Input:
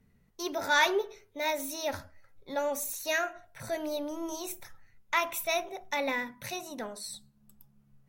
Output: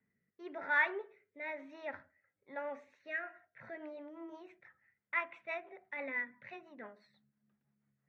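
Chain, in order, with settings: ladder low-pass 2200 Hz, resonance 60%; rotary speaker horn 1 Hz, later 6 Hz, at 2.99; HPF 160 Hz 12 dB/oct

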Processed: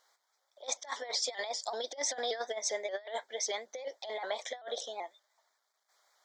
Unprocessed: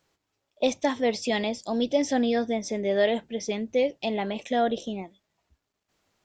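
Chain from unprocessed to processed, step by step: HPF 650 Hz 24 dB/oct; negative-ratio compressor -35 dBFS, ratio -0.5; Butterworth band-stop 2700 Hz, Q 2.3; shaped vibrato saw up 5.2 Hz, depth 100 cents

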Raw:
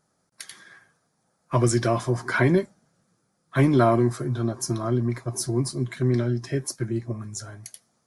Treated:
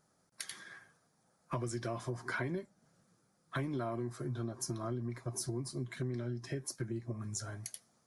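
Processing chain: compressor 6:1, threshold -33 dBFS, peak gain reduction 17.5 dB; gain -2.5 dB

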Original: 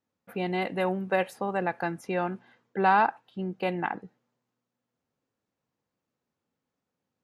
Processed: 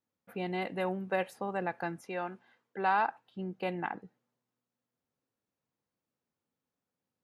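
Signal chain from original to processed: 2.04–3.09 low shelf 270 Hz -10 dB; gain -5.5 dB

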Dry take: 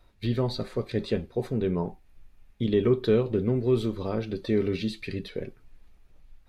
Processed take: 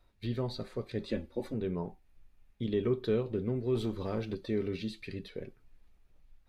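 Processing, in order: 1.09–1.54 comb 3.5 ms, depth 87%; 3.75–4.35 sample leveller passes 1; gain -7.5 dB

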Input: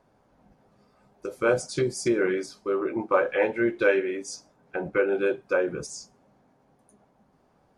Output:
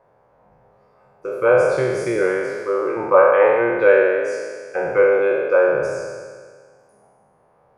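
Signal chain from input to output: spectral trails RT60 1.75 s; graphic EQ 125/250/500/1000/2000/4000/8000 Hz +7/-7/+12/+8/+6/-4/-5 dB; gain -5 dB

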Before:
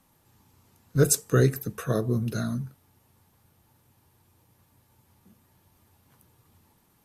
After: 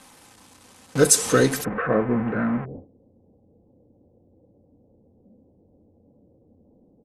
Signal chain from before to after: zero-crossing step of -27 dBFS; steep low-pass 11000 Hz 36 dB/oct, from 1.63 s 2100 Hz, from 2.64 s 570 Hz; gate with hold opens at -26 dBFS; low shelf 170 Hz -12 dB; comb 3.9 ms, depth 42%; gain +5.5 dB

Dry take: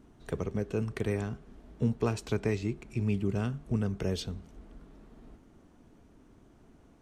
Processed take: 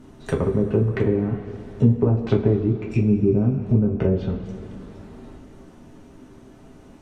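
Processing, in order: treble ducked by the level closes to 490 Hz, closed at -26.5 dBFS; two-slope reverb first 0.22 s, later 2.7 s, from -18 dB, DRR -1.5 dB; gain +9 dB

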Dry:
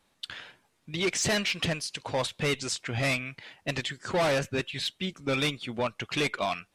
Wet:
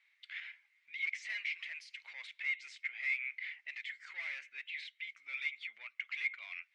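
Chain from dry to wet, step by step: compressor, threshold -35 dBFS, peak gain reduction 11 dB; limiter -33.5 dBFS, peak gain reduction 10 dB; ladder band-pass 2200 Hz, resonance 85%; gain +6.5 dB

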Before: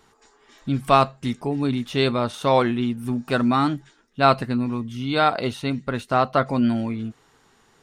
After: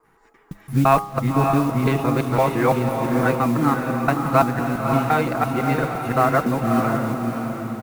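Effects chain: local time reversal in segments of 0.17 s; recorder AGC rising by 6.3 dB/s; band shelf 5000 Hz -14.5 dB; notch 610 Hz, Q 12; comb 6.2 ms, depth 32%; de-hum 102 Hz, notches 13; in parallel at -12 dB: requantised 6-bit, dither none; on the sum: modulation noise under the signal 24 dB; diffused feedback echo 0.575 s, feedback 43%, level -4 dB; gain -1 dB

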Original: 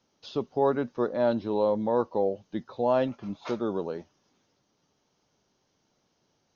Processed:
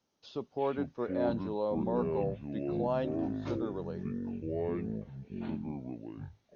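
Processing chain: echoes that change speed 0.24 s, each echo -7 st, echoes 2; gain -8 dB

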